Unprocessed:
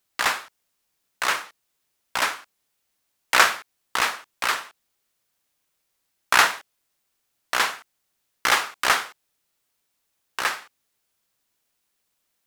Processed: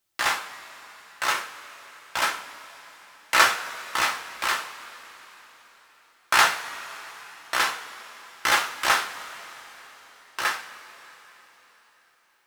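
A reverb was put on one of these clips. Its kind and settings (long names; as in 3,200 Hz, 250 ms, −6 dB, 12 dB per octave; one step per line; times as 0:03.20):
coupled-rooms reverb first 0.25 s, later 4.4 s, from −21 dB, DRR 1 dB
level −3.5 dB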